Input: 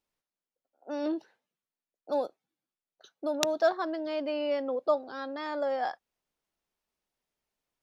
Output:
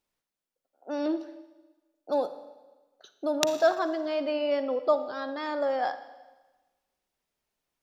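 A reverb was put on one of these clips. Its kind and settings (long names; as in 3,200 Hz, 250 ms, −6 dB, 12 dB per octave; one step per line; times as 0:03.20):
four-comb reverb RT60 1.2 s, DRR 11.5 dB
level +2.5 dB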